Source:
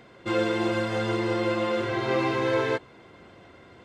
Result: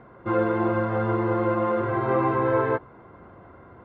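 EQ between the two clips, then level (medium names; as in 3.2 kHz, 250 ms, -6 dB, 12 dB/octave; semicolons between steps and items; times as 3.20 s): resonant low-pass 1.2 kHz, resonance Q 1.9; bass shelf 150 Hz +7.5 dB; 0.0 dB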